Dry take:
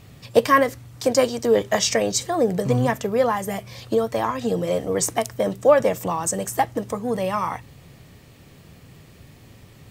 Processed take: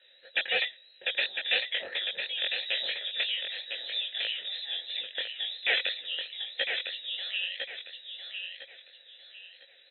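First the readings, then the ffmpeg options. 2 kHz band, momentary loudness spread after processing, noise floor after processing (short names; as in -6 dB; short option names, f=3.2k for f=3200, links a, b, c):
-0.5 dB, 16 LU, -58 dBFS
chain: -filter_complex "[0:a]aeval=exprs='(mod(3.16*val(0)+1,2)-1)/3.16':c=same,lowpass=f=3.4k:t=q:w=0.5098,lowpass=f=3.4k:t=q:w=0.6013,lowpass=f=3.4k:t=q:w=0.9,lowpass=f=3.4k:t=q:w=2.563,afreqshift=-4000,flanger=delay=15.5:depth=7.8:speed=3,asplit=3[a][b][c];[a]bandpass=f=530:t=q:w=8,volume=0dB[d];[b]bandpass=f=1.84k:t=q:w=8,volume=-6dB[e];[c]bandpass=f=2.48k:t=q:w=8,volume=-9dB[f];[d][e][f]amix=inputs=3:normalize=0,aecho=1:1:1004|2008|3012|4016:0.501|0.15|0.0451|0.0135,volume=7.5dB"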